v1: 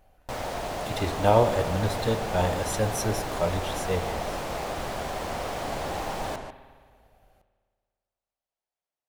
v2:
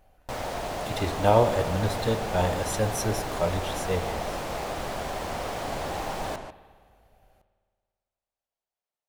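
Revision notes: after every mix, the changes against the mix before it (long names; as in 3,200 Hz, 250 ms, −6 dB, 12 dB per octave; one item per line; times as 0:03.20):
second sound: send off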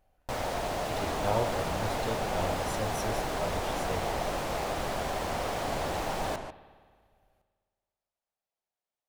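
speech −9.5 dB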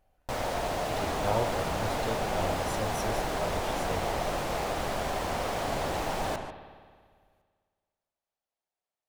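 first sound: send +6.5 dB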